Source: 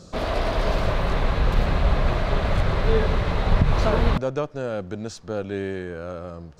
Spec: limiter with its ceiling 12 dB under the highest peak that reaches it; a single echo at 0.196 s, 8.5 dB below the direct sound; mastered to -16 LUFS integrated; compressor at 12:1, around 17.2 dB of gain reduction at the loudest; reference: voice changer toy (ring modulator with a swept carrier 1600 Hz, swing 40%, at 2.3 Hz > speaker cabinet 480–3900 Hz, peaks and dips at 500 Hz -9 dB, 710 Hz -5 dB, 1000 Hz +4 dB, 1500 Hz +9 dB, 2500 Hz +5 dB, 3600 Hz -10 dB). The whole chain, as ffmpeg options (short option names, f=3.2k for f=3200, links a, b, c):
-af "acompressor=threshold=-31dB:ratio=12,alimiter=level_in=8.5dB:limit=-24dB:level=0:latency=1,volume=-8.5dB,aecho=1:1:196:0.376,aeval=exprs='val(0)*sin(2*PI*1600*n/s+1600*0.4/2.3*sin(2*PI*2.3*n/s))':c=same,highpass=480,equalizer=f=500:t=q:w=4:g=-9,equalizer=f=710:t=q:w=4:g=-5,equalizer=f=1k:t=q:w=4:g=4,equalizer=f=1.5k:t=q:w=4:g=9,equalizer=f=2.5k:t=q:w=4:g=5,equalizer=f=3.6k:t=q:w=4:g=-10,lowpass=f=3.9k:w=0.5412,lowpass=f=3.9k:w=1.3066,volume=21dB"